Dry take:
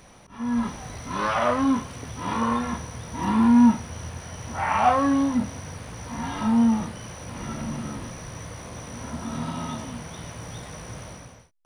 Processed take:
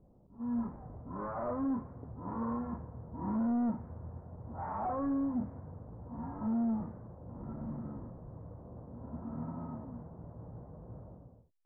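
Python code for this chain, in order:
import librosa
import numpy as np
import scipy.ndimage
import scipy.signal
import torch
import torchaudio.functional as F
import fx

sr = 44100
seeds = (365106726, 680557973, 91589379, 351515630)

y = np.clip(x, -10.0 ** (-20.0 / 20.0), 10.0 ** (-20.0 / 20.0))
y = scipy.ndimage.gaussian_filter1d(y, 7.9, mode='constant')
y = fx.env_lowpass(y, sr, base_hz=480.0, full_db=-21.0)
y = y * librosa.db_to_amplitude(-8.5)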